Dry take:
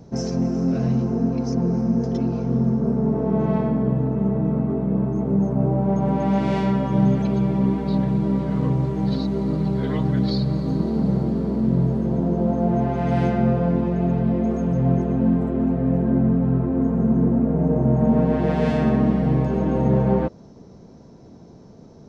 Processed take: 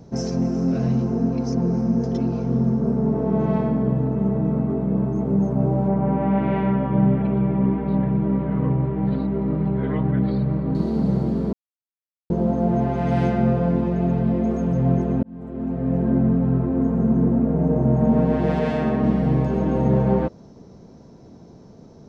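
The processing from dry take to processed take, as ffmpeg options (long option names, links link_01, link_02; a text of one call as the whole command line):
ffmpeg -i in.wav -filter_complex "[0:a]asettb=1/sr,asplit=3[link_01][link_02][link_03];[link_01]atrim=end=5.884[link_04];[link_02]atrim=start=5.88:end=10.75,asetpts=PTS-STARTPTS,afade=type=in:duration=0.004:curve=qsin,afade=type=out:start_time=4.866:duration=0.004:curve=qsin,lowpass=frequency=2500:width=0.5412,lowpass=frequency=2500:width=1.3066[link_05];[link_03]atrim=start=10.746[link_06];[link_04][link_05]acrossfade=duration=0.004:curve1=hsin:curve2=qsin[link_07];[link_07][link_06]acrossfade=duration=0.004:curve1=qsin:curve2=hsin,asettb=1/sr,asplit=3[link_08][link_09][link_10];[link_08]atrim=end=18.594[link_11];[link_09]atrim=start=18.59:end=19.04,asetpts=PTS-STARTPTS,afade=type=in:duration=0.004:curve=qsin,afade=type=out:start_time=0.446:duration=0.004:curve=qsin,bass=frequency=250:gain=-5,treble=frequency=4000:gain=-5[link_12];[link_10]atrim=start=19.036[link_13];[link_11][link_12]acrossfade=duration=0.004:curve1=hsin:curve2=qsin[link_14];[link_14][link_13]acrossfade=duration=0.004:curve1=qsin:curve2=hsin,asplit=4[link_15][link_16][link_17][link_18];[link_15]atrim=end=11.53,asetpts=PTS-STARTPTS,afade=type=out:start_time=11.526:duration=0.004:curve=hsin[link_19];[link_16]atrim=start=11.53:end=12.3,asetpts=PTS-STARTPTS,volume=0[link_20];[link_17]atrim=start=12.3:end=15.23,asetpts=PTS-STARTPTS,afade=type=in:duration=0.004:curve=hsin,afade=type=out:start_time=2.926:duration=0.004:curve=hsin[link_21];[link_18]atrim=start=15.23,asetpts=PTS-STARTPTS,afade=type=in:duration=0.82[link_22];[link_19][link_20][link_21][link_22]concat=n=4:v=0:a=1" out.wav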